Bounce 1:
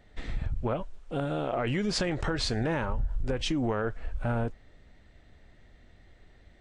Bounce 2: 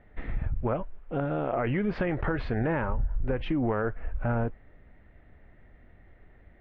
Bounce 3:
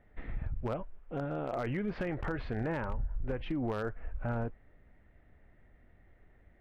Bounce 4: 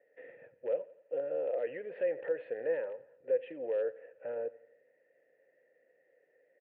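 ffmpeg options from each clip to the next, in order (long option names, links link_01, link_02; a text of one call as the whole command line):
ffmpeg -i in.wav -af "lowpass=frequency=2300:width=0.5412,lowpass=frequency=2300:width=1.3066,volume=1.5dB" out.wav
ffmpeg -i in.wav -af "aeval=exprs='0.1*(abs(mod(val(0)/0.1+3,4)-2)-1)':channel_layout=same,volume=-6.5dB" out.wav
ffmpeg -i in.wav -filter_complex "[0:a]asplit=3[link_01][link_02][link_03];[link_01]bandpass=frequency=530:width_type=q:width=8,volume=0dB[link_04];[link_02]bandpass=frequency=1840:width_type=q:width=8,volume=-6dB[link_05];[link_03]bandpass=frequency=2480:width_type=q:width=8,volume=-9dB[link_06];[link_04][link_05][link_06]amix=inputs=3:normalize=0,highpass=frequency=150:width=0.5412,highpass=frequency=150:width=1.3066,equalizer=frequency=210:width_type=q:width=4:gain=-9,equalizer=frequency=480:width_type=q:width=4:gain=9,equalizer=frequency=1000:width_type=q:width=4:gain=9,lowpass=frequency=3400:width=0.5412,lowpass=frequency=3400:width=1.3066,aecho=1:1:87|174|261|348:0.1|0.048|0.023|0.0111,volume=5dB" out.wav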